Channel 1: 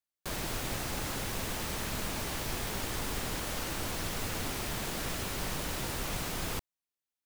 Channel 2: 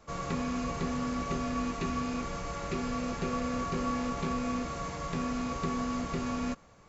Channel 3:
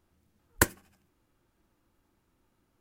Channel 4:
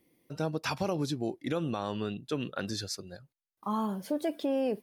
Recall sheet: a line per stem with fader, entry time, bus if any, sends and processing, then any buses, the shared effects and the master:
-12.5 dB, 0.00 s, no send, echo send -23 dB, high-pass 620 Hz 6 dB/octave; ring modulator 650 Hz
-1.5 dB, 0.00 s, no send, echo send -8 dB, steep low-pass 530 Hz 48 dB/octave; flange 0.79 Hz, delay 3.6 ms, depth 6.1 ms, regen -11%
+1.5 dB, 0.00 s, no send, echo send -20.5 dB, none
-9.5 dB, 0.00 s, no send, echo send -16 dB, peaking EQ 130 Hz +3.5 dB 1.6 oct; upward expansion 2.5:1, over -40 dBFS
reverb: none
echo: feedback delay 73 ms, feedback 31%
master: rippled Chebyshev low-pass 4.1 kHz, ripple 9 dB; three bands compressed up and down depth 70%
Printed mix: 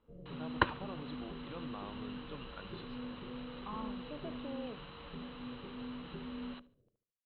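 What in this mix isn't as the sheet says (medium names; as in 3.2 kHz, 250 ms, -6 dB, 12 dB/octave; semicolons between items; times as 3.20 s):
stem 1 -12.5 dB -> -5.0 dB; stem 4: missing upward expansion 2.5:1, over -40 dBFS; master: missing three bands compressed up and down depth 70%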